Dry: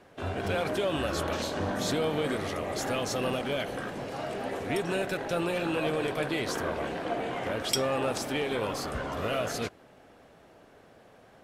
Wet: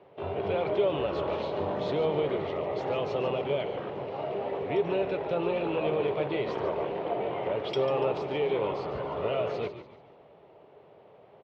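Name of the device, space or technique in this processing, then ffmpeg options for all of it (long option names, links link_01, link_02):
frequency-shifting delay pedal into a guitar cabinet: -filter_complex "[0:a]asplit=5[link_01][link_02][link_03][link_04][link_05];[link_02]adelay=144,afreqshift=-110,volume=-11dB[link_06];[link_03]adelay=288,afreqshift=-220,volume=-19dB[link_07];[link_04]adelay=432,afreqshift=-330,volume=-26.9dB[link_08];[link_05]adelay=576,afreqshift=-440,volume=-34.9dB[link_09];[link_01][link_06][link_07][link_08][link_09]amix=inputs=5:normalize=0,highpass=90,equalizer=frequency=140:width_type=q:width=4:gain=4,equalizer=frequency=250:width_type=q:width=4:gain=-7,equalizer=frequency=410:width_type=q:width=4:gain=9,equalizer=frequency=590:width_type=q:width=4:gain=5,equalizer=frequency=910:width_type=q:width=4:gain=6,equalizer=frequency=1600:width_type=q:width=4:gain=-10,lowpass=frequency=3400:width=0.5412,lowpass=frequency=3400:width=1.3066,volume=-3dB"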